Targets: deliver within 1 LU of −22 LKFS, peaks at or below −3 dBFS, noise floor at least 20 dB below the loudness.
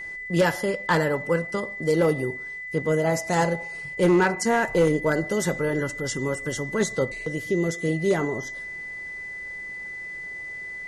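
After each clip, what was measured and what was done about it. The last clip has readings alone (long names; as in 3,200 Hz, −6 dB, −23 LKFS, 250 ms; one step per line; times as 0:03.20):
share of clipped samples 0.4%; peaks flattened at −13.5 dBFS; interfering tone 2,000 Hz; level of the tone −33 dBFS; integrated loudness −25.5 LKFS; sample peak −13.5 dBFS; target loudness −22.0 LKFS
→ clipped peaks rebuilt −13.5 dBFS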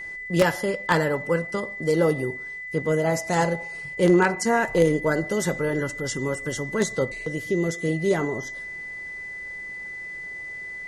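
share of clipped samples 0.0%; interfering tone 2,000 Hz; level of the tone −33 dBFS
→ notch filter 2,000 Hz, Q 30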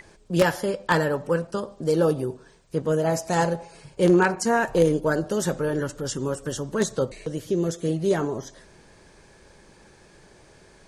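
interfering tone none found; integrated loudness −24.5 LKFS; sample peak −4.5 dBFS; target loudness −22.0 LKFS
→ level +2.5 dB
brickwall limiter −3 dBFS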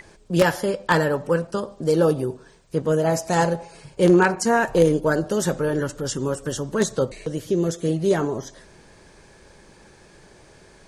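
integrated loudness −22.0 LKFS; sample peak −3.0 dBFS; background noise floor −51 dBFS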